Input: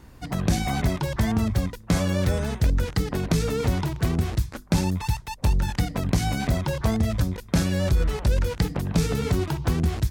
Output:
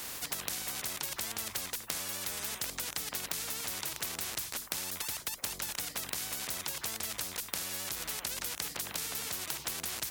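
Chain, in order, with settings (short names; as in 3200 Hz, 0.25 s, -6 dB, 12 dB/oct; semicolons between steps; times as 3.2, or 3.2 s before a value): tilt +4.5 dB/oct; compressor, threshold -29 dBFS, peak gain reduction 11 dB; spectral compressor 4:1; gain -1 dB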